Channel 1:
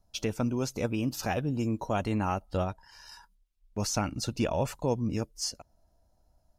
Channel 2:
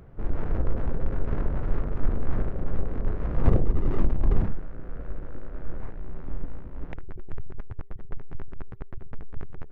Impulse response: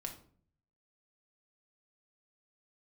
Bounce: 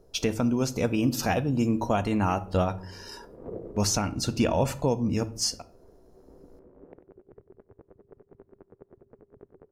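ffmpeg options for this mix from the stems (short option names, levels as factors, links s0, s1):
-filter_complex "[0:a]volume=1.33,asplit=3[s0][s1][s2];[s1]volume=0.708[s3];[1:a]bandpass=f=430:t=q:w=2.2:csg=0,volume=0.841,asplit=3[s4][s5][s6];[s5]volume=0.15[s7];[s6]volume=0.251[s8];[s2]apad=whole_len=428523[s9];[s4][s9]sidechaincompress=threshold=0.00398:ratio=3:attack=16:release=741[s10];[2:a]atrim=start_sample=2205[s11];[s3][s7]amix=inputs=2:normalize=0[s12];[s12][s11]afir=irnorm=-1:irlink=0[s13];[s8]aecho=0:1:94|188|282|376|470|564|658:1|0.5|0.25|0.125|0.0625|0.0312|0.0156[s14];[s0][s10][s13][s14]amix=inputs=4:normalize=0,alimiter=limit=0.211:level=0:latency=1:release=446"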